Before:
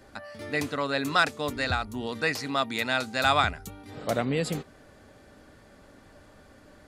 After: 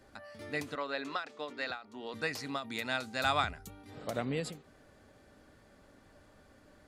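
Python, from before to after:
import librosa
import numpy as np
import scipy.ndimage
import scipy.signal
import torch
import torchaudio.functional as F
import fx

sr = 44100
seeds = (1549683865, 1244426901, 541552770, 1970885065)

y = fx.bandpass_edges(x, sr, low_hz=330.0, high_hz=4500.0, at=(0.75, 2.14))
y = fx.end_taper(y, sr, db_per_s=150.0)
y = F.gain(torch.from_numpy(y), -7.0).numpy()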